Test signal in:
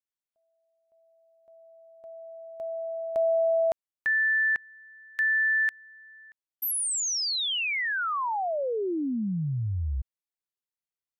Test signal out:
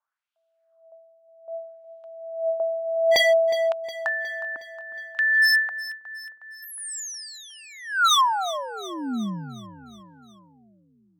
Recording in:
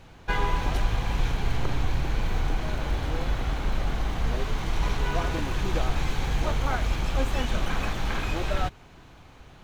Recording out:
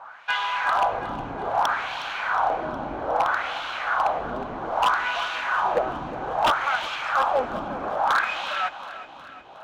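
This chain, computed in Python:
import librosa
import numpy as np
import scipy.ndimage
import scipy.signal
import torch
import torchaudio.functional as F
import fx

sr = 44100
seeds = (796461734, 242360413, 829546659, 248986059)

p1 = fx.high_shelf(x, sr, hz=2400.0, db=8.0)
p2 = fx.wah_lfo(p1, sr, hz=0.62, low_hz=260.0, high_hz=3100.0, q=2.7)
p3 = fx.rider(p2, sr, range_db=5, speed_s=2.0)
p4 = p2 + (p3 * librosa.db_to_amplitude(-2.0))
p5 = fx.band_shelf(p4, sr, hz=940.0, db=14.5, octaves=1.7)
p6 = 10.0 ** (-13.5 / 20.0) * (np.abs((p5 / 10.0 ** (-13.5 / 20.0) + 3.0) % 4.0 - 2.0) - 1.0)
y = p6 + fx.echo_feedback(p6, sr, ms=363, feedback_pct=56, wet_db=-14.5, dry=0)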